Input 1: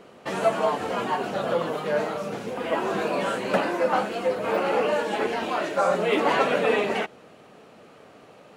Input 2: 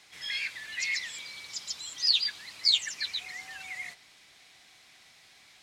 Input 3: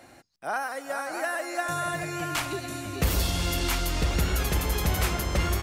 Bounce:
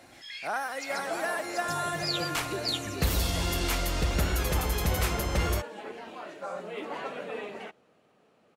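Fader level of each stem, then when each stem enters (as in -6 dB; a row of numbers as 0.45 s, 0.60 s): -15.0 dB, -8.0 dB, -2.0 dB; 0.65 s, 0.00 s, 0.00 s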